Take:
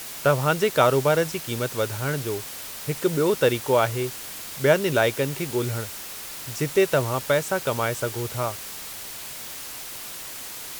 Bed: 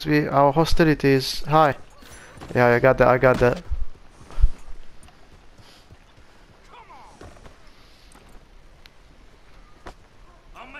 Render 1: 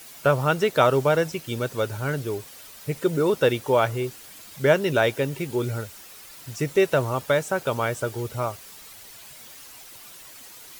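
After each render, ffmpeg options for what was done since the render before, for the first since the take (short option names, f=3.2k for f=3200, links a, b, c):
-af "afftdn=nr=10:nf=-37"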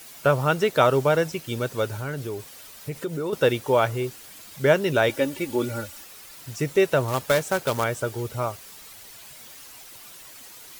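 -filter_complex "[0:a]asettb=1/sr,asplit=3[a][b][c];[a]atrim=end=1.984[d];[b]atrim=start=1.98:end=3.33,asetpts=PTS-STARTPTS,afade=t=in:d=0.004:c=qsin,afade=t=out:st=1.346:d=0.004:c=qsin,acompressor=threshold=-28dB:ratio=2.5:attack=3.2:release=140:knee=1:detection=peak[e];[c]atrim=start=3.326[f];[d][e]acrossfade=d=0.004:c1=hsin:c2=qsin[g];[g][f]acrossfade=d=0.004:c1=qsin:c2=hsin,asettb=1/sr,asplit=3[h][i][j];[h]atrim=end=5.094[k];[i]atrim=start=5.09:end=6.04,asetpts=PTS-STARTPTS,afade=t=in:d=0.004:c=qsin,afade=t=out:st=0.946:d=0.004:c=qsin,aecho=1:1:3.5:0.73,atrim=end_sample=41895[l];[j]atrim=start=6.036[m];[k][l]acrossfade=d=0.004:c1=hsin:c2=qsin[n];[n][m]acrossfade=d=0.004:c1=qsin:c2=hsin,asettb=1/sr,asplit=3[o][p][q];[o]atrim=end=7.084[r];[p]atrim=start=7.08:end=7.84,asetpts=PTS-STARTPTS,afade=t=in:d=0.004:c=qsin,afade=t=out:st=0.756:d=0.004:c=qsin,acrusher=bits=2:mode=log:mix=0:aa=0.000001[s];[q]atrim=start=7.836[t];[r][s]acrossfade=d=0.004:c1=hsin:c2=qsin[u];[u][t]acrossfade=d=0.004:c1=qsin:c2=hsin"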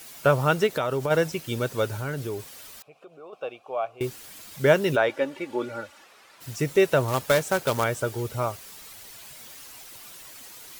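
-filter_complex "[0:a]asplit=3[a][b][c];[a]afade=t=out:st=0.66:d=0.02[d];[b]acompressor=threshold=-23dB:ratio=4:attack=3.2:release=140:knee=1:detection=peak,afade=t=in:st=0.66:d=0.02,afade=t=out:st=1.1:d=0.02[e];[c]afade=t=in:st=1.1:d=0.02[f];[d][e][f]amix=inputs=3:normalize=0,asettb=1/sr,asplit=3[g][h][i];[g]atrim=end=2.824[j];[h]atrim=start=2.82:end=4.01,asetpts=PTS-STARTPTS,afade=t=in:d=0.004:c=qsin,afade=t=out:st=1.186:d=0.004:c=qsin,asplit=3[k][l][m];[k]bandpass=f=730:t=q:w=8,volume=0dB[n];[l]bandpass=f=1.09k:t=q:w=8,volume=-6dB[o];[m]bandpass=f=2.44k:t=q:w=8,volume=-9dB[p];[n][o][p]amix=inputs=3:normalize=0[q];[i]atrim=start=4.006[r];[j][q]acrossfade=d=0.004:c1=hsin:c2=qsin[s];[s][r]acrossfade=d=0.004:c1=qsin:c2=hsin,asplit=3[t][u][v];[t]afade=t=out:st=4.95:d=0.02[w];[u]bandpass=f=960:t=q:w=0.55,afade=t=in:st=4.95:d=0.02,afade=t=out:st=6.4:d=0.02[x];[v]afade=t=in:st=6.4:d=0.02[y];[w][x][y]amix=inputs=3:normalize=0"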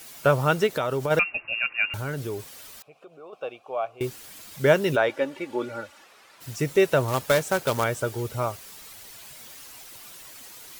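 -filter_complex "[0:a]asettb=1/sr,asplit=3[a][b][c];[a]atrim=end=1.194[d];[b]atrim=start=1.19:end=1.94,asetpts=PTS-STARTPTS,afade=t=in:d=0.004:c=qsin,afade=t=out:st=0.746:d=0.004:c=qsin,lowpass=f=2.5k:t=q:w=0.5098,lowpass=f=2.5k:t=q:w=0.6013,lowpass=f=2.5k:t=q:w=0.9,lowpass=f=2.5k:t=q:w=2.563,afreqshift=-2900[e];[c]atrim=start=1.936[f];[d][e]acrossfade=d=0.004:c1=hsin:c2=qsin[g];[g][f]acrossfade=d=0.004:c1=qsin:c2=hsin"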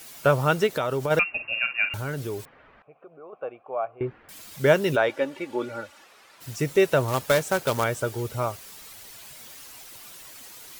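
-filter_complex "[0:a]asettb=1/sr,asplit=3[a][b][c];[a]atrim=end=1.324[d];[b]atrim=start=1.32:end=1.89,asetpts=PTS-STARTPTS,afade=t=in:d=0.004:c=qsin,afade=t=out:st=0.566:d=0.004:c=qsin,asplit=2[e][f];[f]adelay=50,volume=-9dB[g];[e][g]amix=inputs=2:normalize=0,atrim=end_sample=25137[h];[c]atrim=start=1.886[i];[d][h]acrossfade=d=0.004:c1=hsin:c2=qsin[j];[j][i]acrossfade=d=0.004:c1=qsin:c2=hsin,asettb=1/sr,asplit=3[k][l][m];[k]atrim=end=2.454[n];[l]atrim=start=2.45:end=4.29,asetpts=PTS-STARTPTS,afade=t=in:d=0.004:c=qsin,afade=t=out:st=1.836:d=0.004:c=qsin,lowpass=f=2k:w=0.5412,lowpass=f=2k:w=1.3066[o];[m]atrim=start=4.286[p];[n][o]acrossfade=d=0.004:c1=hsin:c2=qsin[q];[q][p]acrossfade=d=0.004:c1=qsin:c2=hsin"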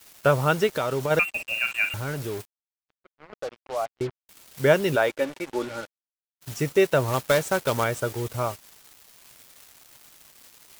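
-af "acrusher=bits=5:mix=0:aa=0.5"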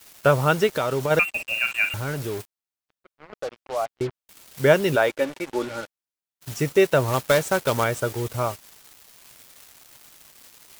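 -af "volume=2dB"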